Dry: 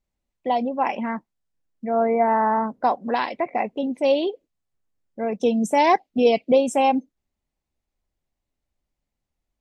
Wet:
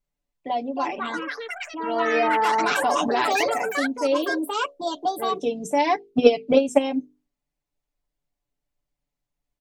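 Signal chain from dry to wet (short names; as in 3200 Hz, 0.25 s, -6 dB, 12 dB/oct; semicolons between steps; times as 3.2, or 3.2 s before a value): notches 50/100/150/200/250/300/350/400/450/500 Hz; echoes that change speed 0.442 s, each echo +6 st, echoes 3; comb 6.9 ms, depth 76%; 5.89–6.86 transient shaper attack +11 dB, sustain -2 dB; dynamic EQ 1000 Hz, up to -4 dB, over -27 dBFS, Q 0.8; 2.15–3.54 fast leveller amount 70%; gain -4 dB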